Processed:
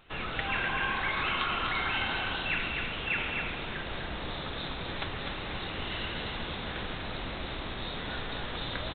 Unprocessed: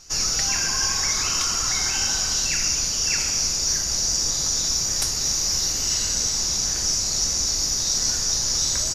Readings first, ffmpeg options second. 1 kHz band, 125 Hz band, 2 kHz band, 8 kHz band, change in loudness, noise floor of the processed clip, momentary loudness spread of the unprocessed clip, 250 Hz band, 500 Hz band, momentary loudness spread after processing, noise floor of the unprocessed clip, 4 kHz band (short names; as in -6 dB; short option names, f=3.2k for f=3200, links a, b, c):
+1.0 dB, -3.5 dB, +1.0 dB, under -40 dB, -12.5 dB, -38 dBFS, 1 LU, -0.5 dB, +0.5 dB, 8 LU, -25 dBFS, -14.0 dB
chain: -filter_complex "[0:a]lowshelf=f=120:g=-8.5,aresample=8000,aresample=44100,asplit=2[a][b];[b]aecho=0:1:250:0.596[c];[a][c]amix=inputs=2:normalize=0"